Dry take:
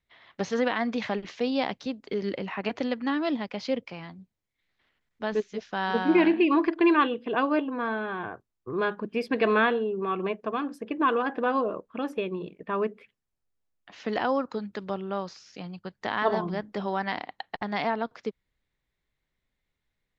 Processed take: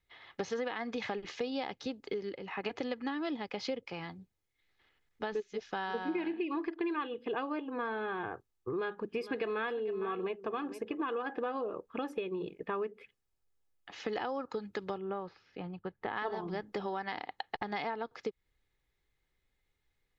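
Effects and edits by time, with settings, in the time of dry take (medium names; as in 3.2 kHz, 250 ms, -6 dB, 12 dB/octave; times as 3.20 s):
2.01–2.75 s: dip -13 dB, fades 0.37 s
8.69–11.01 s: delay 455 ms -17.5 dB
14.98–16.16 s: distance through air 460 m
whole clip: comb 2.4 ms, depth 39%; compression 6:1, threshold -33 dBFS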